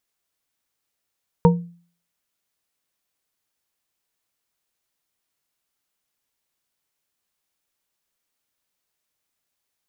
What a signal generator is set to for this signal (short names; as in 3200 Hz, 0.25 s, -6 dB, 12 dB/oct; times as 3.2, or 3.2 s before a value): glass hit bar, lowest mode 172 Hz, modes 3, decay 0.45 s, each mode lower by 2.5 dB, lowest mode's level -8.5 dB